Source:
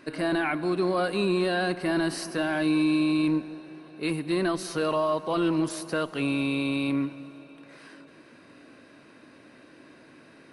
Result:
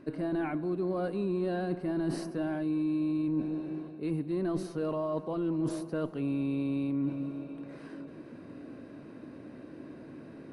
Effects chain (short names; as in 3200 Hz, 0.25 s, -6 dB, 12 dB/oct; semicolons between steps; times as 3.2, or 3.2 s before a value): tilt shelf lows +9.5 dB, about 870 Hz; reverse; compressor 5:1, threshold -30 dBFS, peak gain reduction 14 dB; reverse